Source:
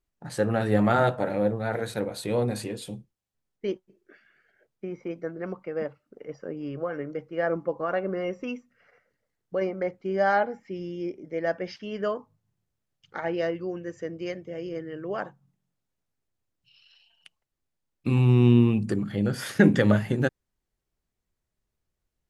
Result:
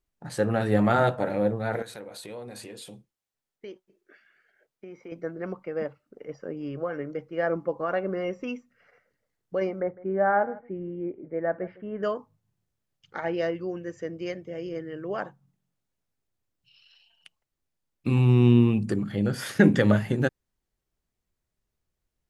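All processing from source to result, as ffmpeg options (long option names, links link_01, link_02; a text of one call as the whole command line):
ffmpeg -i in.wav -filter_complex "[0:a]asettb=1/sr,asplit=3[link_01][link_02][link_03];[link_01]atrim=end=1.824[link_04];[link_02]atrim=start=1.82:end=5.12,asetpts=PTS-STARTPTS,afade=type=in:duration=0.004:curve=qsin,afade=type=out:start_time=3.296:duration=0.004:curve=qsin,lowshelf=frequency=260:gain=-11.5,acompressor=threshold=-39dB:ratio=3:attack=3.2:release=140:knee=1:detection=peak[link_05];[link_03]atrim=start=5.116[link_06];[link_04][link_05]acrossfade=duration=0.004:curve1=hsin:curve2=qsin[link_07];[link_07][link_06]acrossfade=duration=0.004:curve1=qsin:curve2=hsin,asettb=1/sr,asplit=3[link_08][link_09][link_10];[link_08]atrim=end=9.804[link_11];[link_09]atrim=start=9.8:end=12.03,asetpts=PTS-STARTPTS,afade=type=in:duration=0.004:curve=qsin,afade=type=out:start_time=2.226:duration=0.004:curve=qsin,lowpass=frequency=1700:width=0.5412,lowpass=frequency=1700:width=1.3066,aecho=1:1:156:0.1,atrim=end_sample=98343[link_12];[link_10]atrim=start=12.026[link_13];[link_11][link_12]acrossfade=duration=0.004:curve1=hsin:curve2=qsin[link_14];[link_14][link_13]acrossfade=duration=0.004:curve1=qsin:curve2=hsin" out.wav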